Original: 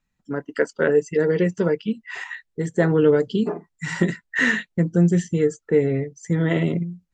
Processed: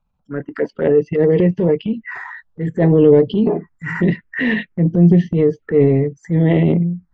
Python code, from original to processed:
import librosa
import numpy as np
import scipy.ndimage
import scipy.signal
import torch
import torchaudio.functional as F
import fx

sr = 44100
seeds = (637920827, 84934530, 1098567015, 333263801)

y = scipy.signal.sosfilt(scipy.signal.butter(2, 2000.0, 'lowpass', fs=sr, output='sos'), x)
y = fx.env_phaser(y, sr, low_hz=320.0, high_hz=1400.0, full_db=-20.0)
y = fx.transient(y, sr, attack_db=-7, sustain_db=6)
y = y * librosa.db_to_amplitude(8.0)